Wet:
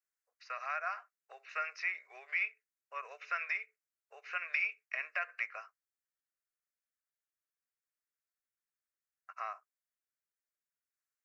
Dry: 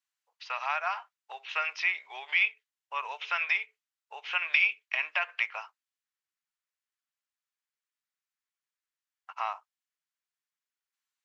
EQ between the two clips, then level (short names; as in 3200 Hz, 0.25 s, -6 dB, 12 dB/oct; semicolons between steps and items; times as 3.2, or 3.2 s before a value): fixed phaser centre 890 Hz, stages 6; -3.5 dB